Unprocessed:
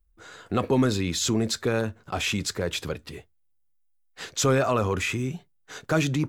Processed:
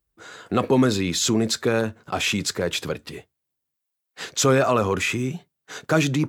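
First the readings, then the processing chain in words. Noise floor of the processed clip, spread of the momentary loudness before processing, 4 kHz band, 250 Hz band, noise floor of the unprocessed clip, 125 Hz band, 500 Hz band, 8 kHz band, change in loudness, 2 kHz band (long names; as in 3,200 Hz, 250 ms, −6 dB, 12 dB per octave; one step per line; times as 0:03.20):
−82 dBFS, 18 LU, +4.0 dB, +3.5 dB, −66 dBFS, +1.5 dB, +4.0 dB, +4.0 dB, +3.5 dB, +4.0 dB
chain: high-pass filter 120 Hz 12 dB per octave
level +4 dB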